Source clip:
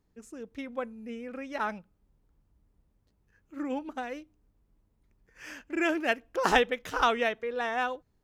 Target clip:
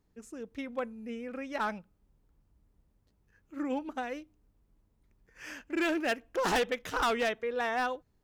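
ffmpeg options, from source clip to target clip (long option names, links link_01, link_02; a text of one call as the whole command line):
ffmpeg -i in.wav -af "volume=24.5dB,asoftclip=hard,volume=-24.5dB" out.wav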